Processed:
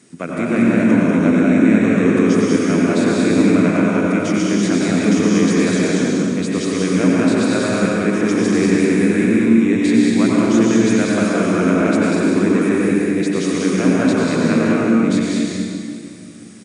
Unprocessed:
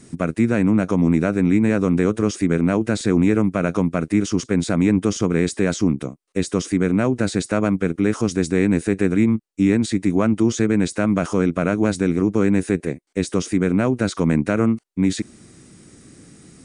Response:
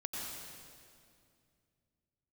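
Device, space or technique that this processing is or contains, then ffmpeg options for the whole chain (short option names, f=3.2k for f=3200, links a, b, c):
stadium PA: -filter_complex "[0:a]highpass=180,equalizer=f=2.6k:t=o:w=1.6:g=4,aecho=1:1:192.4|236.2:0.708|0.562[a];[1:a]atrim=start_sample=2205[b];[a][b]afir=irnorm=-1:irlink=0"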